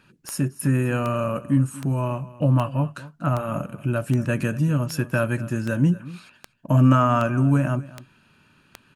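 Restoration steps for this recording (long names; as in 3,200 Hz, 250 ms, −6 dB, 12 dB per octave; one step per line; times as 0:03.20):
click removal
echo removal 239 ms −18.5 dB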